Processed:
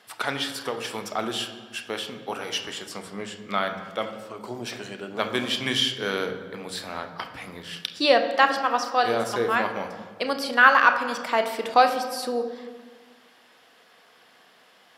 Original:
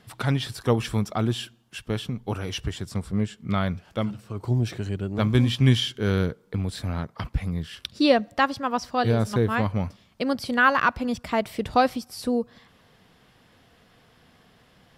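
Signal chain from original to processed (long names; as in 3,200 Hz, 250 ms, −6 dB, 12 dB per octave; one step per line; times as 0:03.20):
high-pass filter 530 Hz 12 dB per octave
0:00.49–0:01.18: downward compressor, threshold −30 dBFS, peak gain reduction 9.5 dB
on a send: convolution reverb RT60 1.5 s, pre-delay 3 ms, DRR 6 dB
on the sum: level +3.5 dB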